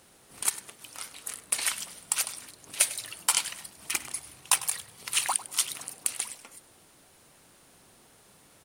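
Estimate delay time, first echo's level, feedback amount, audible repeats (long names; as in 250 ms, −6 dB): 100 ms, −16.5 dB, 21%, 2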